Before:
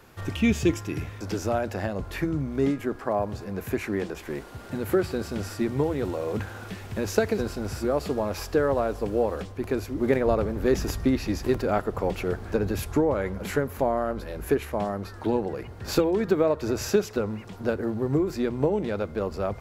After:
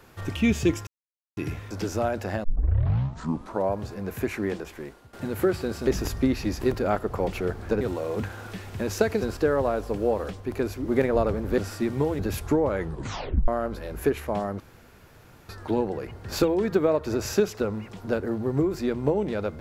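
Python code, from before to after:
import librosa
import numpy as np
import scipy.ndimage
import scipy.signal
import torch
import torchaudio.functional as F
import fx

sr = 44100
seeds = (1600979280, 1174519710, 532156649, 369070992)

y = fx.edit(x, sr, fx.insert_silence(at_s=0.87, length_s=0.5),
    fx.tape_start(start_s=1.94, length_s=1.31),
    fx.fade_out_to(start_s=4.01, length_s=0.62, floor_db=-16.0),
    fx.swap(start_s=5.37, length_s=0.61, other_s=10.7, other_length_s=1.94),
    fx.cut(start_s=7.54, length_s=0.95),
    fx.tape_stop(start_s=13.23, length_s=0.7),
    fx.insert_room_tone(at_s=15.05, length_s=0.89), tone=tone)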